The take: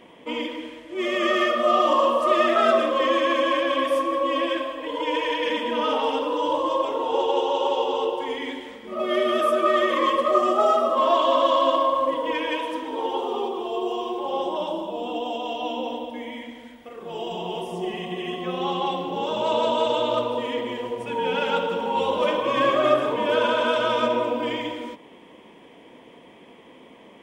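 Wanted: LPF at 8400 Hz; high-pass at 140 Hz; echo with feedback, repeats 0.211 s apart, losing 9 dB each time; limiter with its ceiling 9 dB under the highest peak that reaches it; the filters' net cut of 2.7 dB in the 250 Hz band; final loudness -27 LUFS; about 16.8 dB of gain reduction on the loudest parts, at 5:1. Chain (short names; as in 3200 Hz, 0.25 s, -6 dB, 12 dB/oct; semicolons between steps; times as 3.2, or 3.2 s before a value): HPF 140 Hz; LPF 8400 Hz; bell 250 Hz -3.5 dB; compressor 5:1, threshold -35 dBFS; limiter -32.5 dBFS; feedback echo 0.211 s, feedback 35%, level -9 dB; gain +13.5 dB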